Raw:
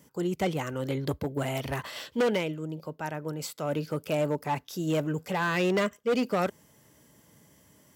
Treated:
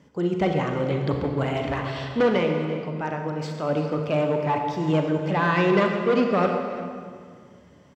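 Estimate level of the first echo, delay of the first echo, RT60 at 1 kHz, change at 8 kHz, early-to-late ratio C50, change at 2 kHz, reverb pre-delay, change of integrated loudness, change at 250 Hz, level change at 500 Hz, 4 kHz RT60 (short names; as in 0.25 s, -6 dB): -15.0 dB, 0.339 s, 2.0 s, n/a, 3.5 dB, +5.0 dB, 33 ms, +6.0 dB, +6.5 dB, +6.5 dB, 1.5 s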